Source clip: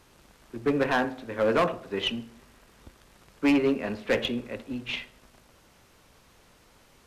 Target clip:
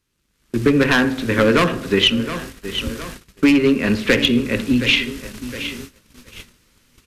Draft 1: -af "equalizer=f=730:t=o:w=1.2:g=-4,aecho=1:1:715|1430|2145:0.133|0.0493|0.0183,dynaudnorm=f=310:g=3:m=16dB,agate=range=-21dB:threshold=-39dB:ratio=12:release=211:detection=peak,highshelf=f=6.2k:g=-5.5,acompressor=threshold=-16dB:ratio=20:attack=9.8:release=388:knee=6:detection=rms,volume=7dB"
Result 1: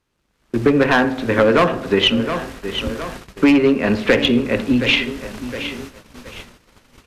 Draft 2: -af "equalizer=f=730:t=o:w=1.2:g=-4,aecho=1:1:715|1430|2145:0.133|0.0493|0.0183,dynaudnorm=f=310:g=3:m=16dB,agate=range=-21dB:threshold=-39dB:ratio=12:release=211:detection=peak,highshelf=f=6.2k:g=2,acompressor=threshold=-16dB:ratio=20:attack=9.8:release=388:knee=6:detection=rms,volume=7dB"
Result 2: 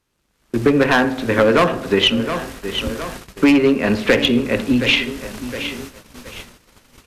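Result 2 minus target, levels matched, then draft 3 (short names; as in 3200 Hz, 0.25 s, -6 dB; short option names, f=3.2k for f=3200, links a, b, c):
1000 Hz band +3.0 dB
-af "equalizer=f=730:t=o:w=1.2:g=-14.5,aecho=1:1:715|1430|2145:0.133|0.0493|0.0183,dynaudnorm=f=310:g=3:m=16dB,agate=range=-21dB:threshold=-39dB:ratio=12:release=211:detection=peak,highshelf=f=6.2k:g=2,acompressor=threshold=-16dB:ratio=20:attack=9.8:release=388:knee=6:detection=rms,volume=7dB"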